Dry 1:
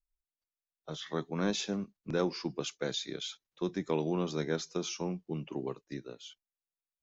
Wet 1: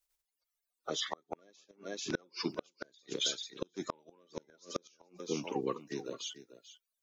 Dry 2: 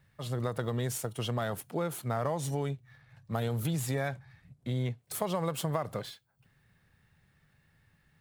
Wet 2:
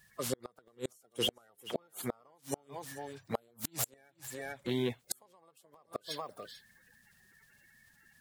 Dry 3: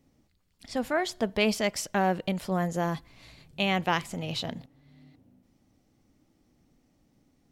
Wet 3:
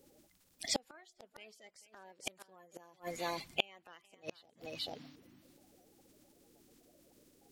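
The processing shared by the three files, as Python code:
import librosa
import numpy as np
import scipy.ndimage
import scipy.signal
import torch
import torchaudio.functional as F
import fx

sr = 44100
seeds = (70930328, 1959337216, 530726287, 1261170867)

p1 = fx.spec_quant(x, sr, step_db=30)
p2 = fx.bass_treble(p1, sr, bass_db=-14, treble_db=4)
p3 = p2 + fx.echo_single(p2, sr, ms=440, db=-14.5, dry=0)
p4 = fx.gate_flip(p3, sr, shuts_db=-26.0, range_db=-36)
y = F.gain(torch.from_numpy(p4), 6.5).numpy()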